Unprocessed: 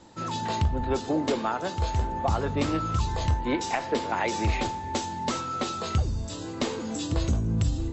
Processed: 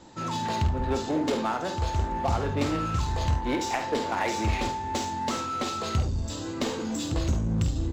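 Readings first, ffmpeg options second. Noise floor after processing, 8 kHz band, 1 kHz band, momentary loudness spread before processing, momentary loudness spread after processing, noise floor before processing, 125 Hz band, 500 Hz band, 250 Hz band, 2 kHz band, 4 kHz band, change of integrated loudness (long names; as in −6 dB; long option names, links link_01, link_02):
−34 dBFS, can't be measured, +0.5 dB, 5 LU, 4 LU, −36 dBFS, −0.5 dB, −0.5 dB, 0.0 dB, 0.0 dB, +0.5 dB, 0.0 dB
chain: -filter_complex "[0:a]asplit=2[link_01][link_02];[link_02]aeval=exprs='0.0282*(abs(mod(val(0)/0.0282+3,4)-2)-1)':channel_layout=same,volume=-8dB[link_03];[link_01][link_03]amix=inputs=2:normalize=0,aecho=1:1:49|72:0.376|0.237,volume=-1.5dB"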